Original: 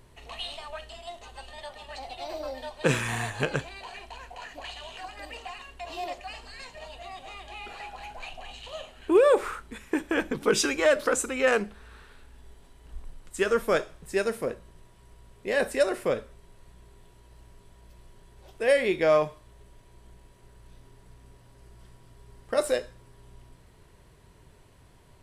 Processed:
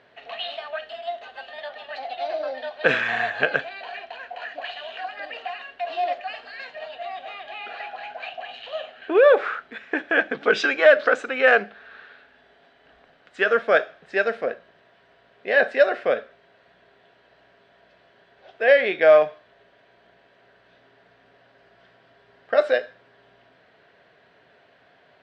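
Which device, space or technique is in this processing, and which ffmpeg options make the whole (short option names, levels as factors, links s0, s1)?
phone earpiece: -af "highpass=340,equalizer=f=350:t=q:w=4:g=-7,equalizer=f=690:t=q:w=4:g=8,equalizer=f=970:t=q:w=4:g=-9,equalizer=f=1600:t=q:w=4:g=8,lowpass=f=3900:w=0.5412,lowpass=f=3900:w=1.3066,volume=1.78"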